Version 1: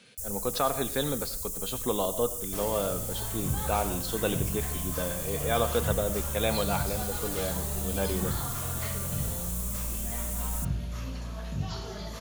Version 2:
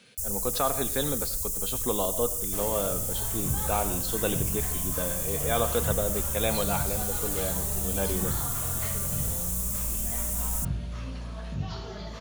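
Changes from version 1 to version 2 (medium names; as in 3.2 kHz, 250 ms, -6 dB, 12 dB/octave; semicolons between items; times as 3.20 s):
first sound +5.0 dB; second sound: add low-pass 5 kHz 12 dB/octave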